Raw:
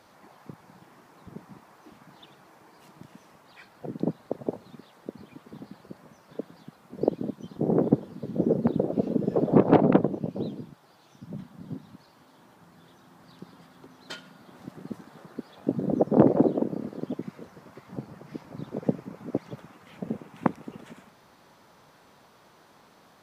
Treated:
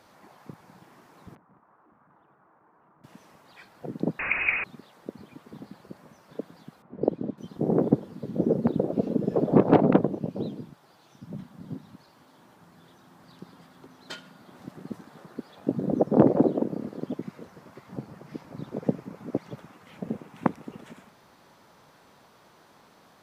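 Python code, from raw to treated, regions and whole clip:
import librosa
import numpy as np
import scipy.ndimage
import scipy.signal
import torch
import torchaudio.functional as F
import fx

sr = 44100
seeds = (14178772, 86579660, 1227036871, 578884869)

y = fx.chain(x, sr, fx.transient(attack_db=-8, sustain_db=-3),
    fx.ladder_lowpass(hz=1600.0, resonance_pct=40),
    fx.transformer_sat(knee_hz=1100.0), at=(1.35, 3.04))
y = fx.chain(y, sr, fx.zero_step(step_db=-28.0),
    fx.leveller(passes=1),
    fx.freq_invert(carrier_hz=2700), at=(4.19, 4.64))
y = fx.chain(y, sr, fx.env_lowpass(base_hz=1600.0, full_db=-22.0),
    fx.high_shelf(hz=3000.0, db=-11.5), at=(6.82, 7.38))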